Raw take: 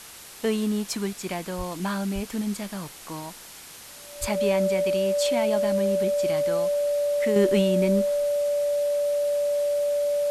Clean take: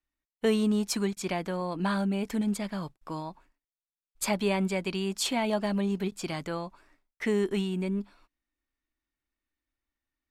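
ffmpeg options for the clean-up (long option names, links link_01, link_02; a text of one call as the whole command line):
ffmpeg -i in.wav -filter_complex "[0:a]bandreject=frequency=580:width=30,asplit=3[link_01][link_02][link_03];[link_01]afade=type=out:start_time=1.57:duration=0.02[link_04];[link_02]highpass=frequency=140:width=0.5412,highpass=frequency=140:width=1.3066,afade=type=in:start_time=1.57:duration=0.02,afade=type=out:start_time=1.69:duration=0.02[link_05];[link_03]afade=type=in:start_time=1.69:duration=0.02[link_06];[link_04][link_05][link_06]amix=inputs=3:normalize=0,asplit=3[link_07][link_08][link_09];[link_07]afade=type=out:start_time=2.14:duration=0.02[link_10];[link_08]highpass=frequency=140:width=0.5412,highpass=frequency=140:width=1.3066,afade=type=in:start_time=2.14:duration=0.02,afade=type=out:start_time=2.26:duration=0.02[link_11];[link_09]afade=type=in:start_time=2.26:duration=0.02[link_12];[link_10][link_11][link_12]amix=inputs=3:normalize=0,asplit=3[link_13][link_14][link_15];[link_13]afade=type=out:start_time=4.2:duration=0.02[link_16];[link_14]highpass=frequency=140:width=0.5412,highpass=frequency=140:width=1.3066,afade=type=in:start_time=4.2:duration=0.02,afade=type=out:start_time=4.32:duration=0.02[link_17];[link_15]afade=type=in:start_time=4.32:duration=0.02[link_18];[link_16][link_17][link_18]amix=inputs=3:normalize=0,afwtdn=0.0079,asetnsamples=nb_out_samples=441:pad=0,asendcmd='7.36 volume volume -6.5dB',volume=0dB" out.wav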